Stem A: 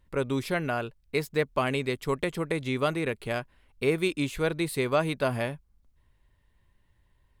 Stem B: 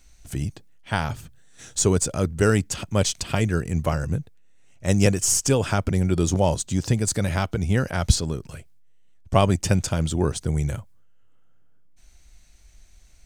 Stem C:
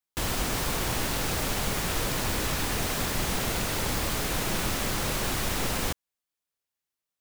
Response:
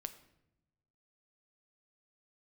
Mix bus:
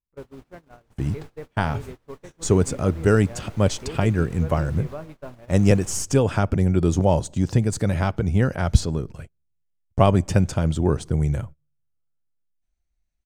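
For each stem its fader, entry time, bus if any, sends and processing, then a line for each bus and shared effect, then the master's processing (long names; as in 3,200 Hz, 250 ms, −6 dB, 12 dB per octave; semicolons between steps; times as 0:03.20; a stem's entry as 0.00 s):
−5.5 dB, 0.00 s, bus A, send −4.5 dB, high-shelf EQ 2,400 Hz −12 dB
+1.0 dB, 0.65 s, no bus, send −12.5 dB, no processing
−9.0 dB, 0.00 s, bus A, send −12 dB, no processing
bus A: 0.0 dB, high-shelf EQ 9,400 Hz −8.5 dB; downward compressor 2.5 to 1, threshold −46 dBFS, peak gain reduction 14 dB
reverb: on, pre-delay 7 ms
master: high-shelf EQ 2,400 Hz −10.5 dB; noise gate −35 dBFS, range −26 dB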